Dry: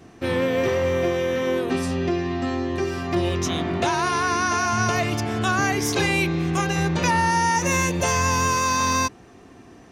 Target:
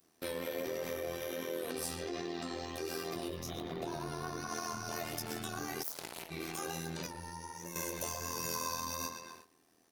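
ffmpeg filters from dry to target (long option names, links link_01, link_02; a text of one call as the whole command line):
ffmpeg -i in.wav -filter_complex "[0:a]asettb=1/sr,asplit=3[link_01][link_02][link_03];[link_01]atrim=end=3.284[link_04];[link_02]atrim=start=3.28:end=4.49,asetpts=PTS-STARTPTS,afade=type=in:duration=0.004:curve=qsin,afade=type=out:start_time=1.206:duration=0.004:curve=qsin,equalizer=frequency=125:width_type=o:width=1:gain=12,equalizer=frequency=500:width_type=o:width=1:gain=6,equalizer=frequency=8000:width_type=o:width=1:gain=-6[link_05];[link_03]atrim=start=4.486[link_06];[link_04][link_05]acrossfade=duration=0.004:curve1=hsin:curve2=qsin[link_07];[link_07][link_06]acrossfade=duration=0.004:curve1=qsin:curve2=hsin,asplit=2[link_08][link_09];[link_09]adelay=117,lowpass=frequency=3500:poles=1,volume=-8dB,asplit=2[link_10][link_11];[link_11]adelay=117,lowpass=frequency=3500:poles=1,volume=0.47,asplit=2[link_12][link_13];[link_13]adelay=117,lowpass=frequency=3500:poles=1,volume=0.47,asplit=2[link_14][link_15];[link_15]adelay=117,lowpass=frequency=3500:poles=1,volume=0.47,asplit=2[link_16][link_17];[link_17]adelay=117,lowpass=frequency=3500:poles=1,volume=0.47[link_18];[link_08][link_10][link_12][link_14][link_16][link_18]amix=inputs=6:normalize=0,flanger=delay=17.5:depth=4.5:speed=1.3,acrossover=split=680[link_19][link_20];[link_20]acompressor=threshold=-36dB:ratio=6[link_21];[link_19][link_21]amix=inputs=2:normalize=0,aexciter=amount=1.1:drive=8.4:freq=3900,asplit=3[link_22][link_23][link_24];[link_22]afade=type=out:start_time=5.82:duration=0.02[link_25];[link_23]aeval=exprs='0.178*(cos(1*acos(clip(val(0)/0.178,-1,1)))-cos(1*PI/2))+0.0708*(cos(3*acos(clip(val(0)/0.178,-1,1)))-cos(3*PI/2))':channel_layout=same,afade=type=in:start_time=5.82:duration=0.02,afade=type=out:start_time=6.3:duration=0.02[link_26];[link_24]afade=type=in:start_time=6.3:duration=0.02[link_27];[link_25][link_26][link_27]amix=inputs=3:normalize=0,asettb=1/sr,asplit=3[link_28][link_29][link_30];[link_28]atrim=end=7.064[link_31];[link_29]atrim=start=7.06:end=7.76,asetpts=PTS-STARTPTS,afade=type=in:duration=0.004:curve=qsin,afade=type=out:start_time=0.696:duration=0.004:curve=qsin,acrossover=split=130[link_32][link_33];[link_33]acompressor=threshold=-42dB:ratio=2.5[link_34];[link_32][link_34]amix=inputs=2:normalize=0[link_35];[link_30]atrim=start=7.756[link_36];[link_31][link_35]acrossfade=duration=0.004:curve1=hsin:curve2=qsin[link_37];[link_37][link_36]acrossfade=duration=0.004:curve1=qsin:curve2=hsin,alimiter=limit=-22.5dB:level=0:latency=1:release=45,aemphasis=mode=production:type=bsi,tremolo=f=82:d=0.75,agate=range=-13dB:threshold=-48dB:ratio=16:detection=peak,volume=-3.5dB" out.wav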